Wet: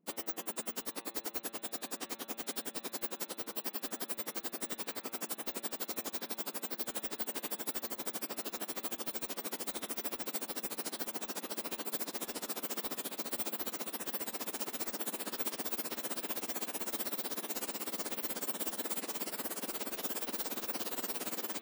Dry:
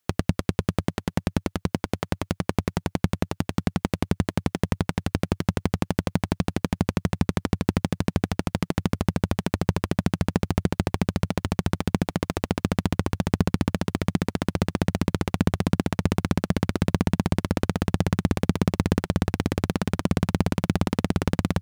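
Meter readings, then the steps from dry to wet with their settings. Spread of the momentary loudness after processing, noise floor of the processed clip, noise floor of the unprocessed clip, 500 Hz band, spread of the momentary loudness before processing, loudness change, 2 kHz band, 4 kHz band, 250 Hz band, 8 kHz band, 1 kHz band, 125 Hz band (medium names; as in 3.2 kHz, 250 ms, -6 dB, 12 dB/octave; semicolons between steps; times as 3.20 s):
3 LU, -57 dBFS, -74 dBFS, -13.5 dB, 4 LU, -11.0 dB, -10.5 dB, -5.5 dB, -21.5 dB, +1.0 dB, -12.0 dB, -37.0 dB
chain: spectrum inverted on a logarithmic axis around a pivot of 1.9 kHz; band-stop 6.2 kHz, Q 21; de-hum 114.1 Hz, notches 37; trim -5.5 dB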